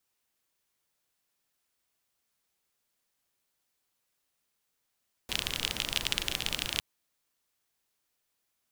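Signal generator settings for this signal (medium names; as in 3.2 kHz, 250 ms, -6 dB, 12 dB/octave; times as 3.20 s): rain from filtered ticks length 1.51 s, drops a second 31, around 3.1 kHz, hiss -6 dB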